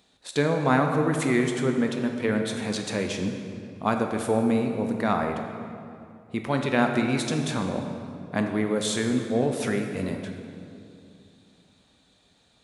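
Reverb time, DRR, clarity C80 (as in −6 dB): 2.6 s, 3.5 dB, 6.0 dB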